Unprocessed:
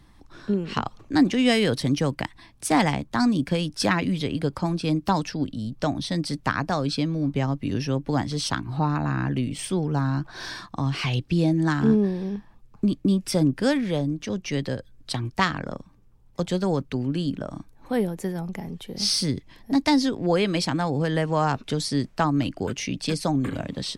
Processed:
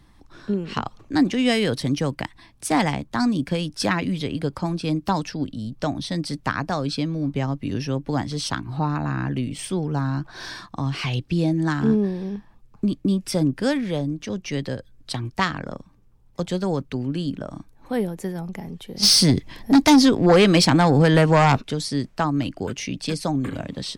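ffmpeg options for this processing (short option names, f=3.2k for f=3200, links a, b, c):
-filter_complex "[0:a]asplit=3[a][b][c];[a]afade=t=out:st=19.02:d=0.02[d];[b]aeval=exprs='0.355*sin(PI/2*2*val(0)/0.355)':c=same,afade=t=in:st=19.02:d=0.02,afade=t=out:st=21.6:d=0.02[e];[c]afade=t=in:st=21.6:d=0.02[f];[d][e][f]amix=inputs=3:normalize=0"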